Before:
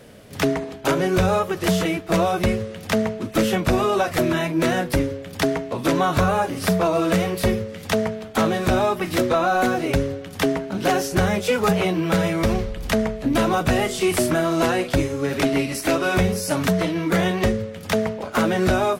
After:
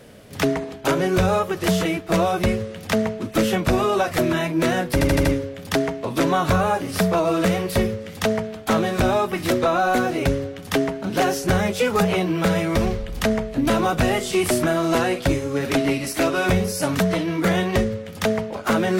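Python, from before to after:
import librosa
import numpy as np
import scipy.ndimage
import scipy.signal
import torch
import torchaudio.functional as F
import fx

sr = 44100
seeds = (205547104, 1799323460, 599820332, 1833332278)

y = fx.edit(x, sr, fx.stutter(start_s=4.93, slice_s=0.08, count=5), tone=tone)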